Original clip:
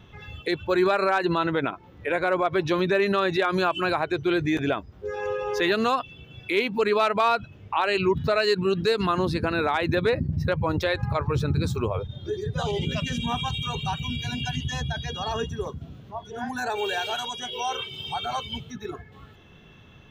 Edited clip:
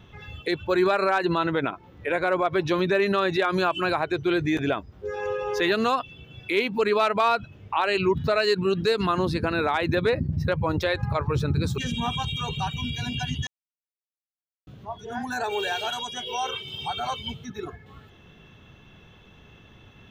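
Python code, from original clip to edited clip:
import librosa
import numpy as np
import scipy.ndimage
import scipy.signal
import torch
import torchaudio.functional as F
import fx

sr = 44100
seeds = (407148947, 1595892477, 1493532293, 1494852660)

y = fx.edit(x, sr, fx.cut(start_s=11.78, length_s=1.26),
    fx.silence(start_s=14.73, length_s=1.2), tone=tone)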